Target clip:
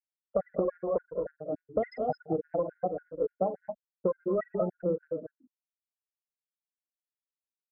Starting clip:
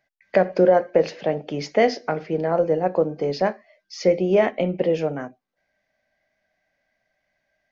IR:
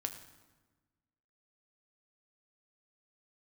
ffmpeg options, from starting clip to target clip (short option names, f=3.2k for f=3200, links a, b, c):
-af "crystalizer=i=1.5:c=0,aeval=exprs='(tanh(5.62*val(0)+0.6)-tanh(0.6))/5.62':c=same,afftfilt=real='re*gte(hypot(re,im),0.224)':imag='im*gte(hypot(re,im),0.224)':win_size=1024:overlap=0.75,acontrast=26,adynamicequalizer=threshold=0.0224:dfrequency=2300:dqfactor=0.79:tfrequency=2300:tqfactor=0.79:attack=5:release=100:ratio=0.375:range=2:mode=cutabove:tftype=bell,aecho=1:1:47|123|199|221|237:0.2|0.158|0.106|0.316|0.15,acompressor=threshold=-19dB:ratio=12,highpass=f=42:w=0.5412,highpass=f=42:w=1.3066,equalizer=f=1.4k:w=1.8:g=13.5,afftfilt=real='re*gt(sin(2*PI*3.5*pts/sr)*(1-2*mod(floor(b*sr/1024/1400),2)),0)':imag='im*gt(sin(2*PI*3.5*pts/sr)*(1-2*mod(floor(b*sr/1024/1400),2)),0)':win_size=1024:overlap=0.75,volume=-5dB"